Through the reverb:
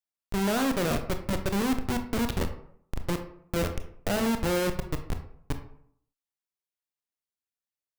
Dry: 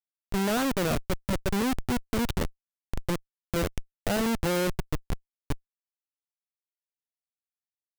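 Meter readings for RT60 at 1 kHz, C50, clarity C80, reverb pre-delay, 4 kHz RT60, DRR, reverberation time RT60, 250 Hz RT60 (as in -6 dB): 0.65 s, 10.0 dB, 13.0 dB, 23 ms, 0.35 s, 6.5 dB, 0.65 s, 0.70 s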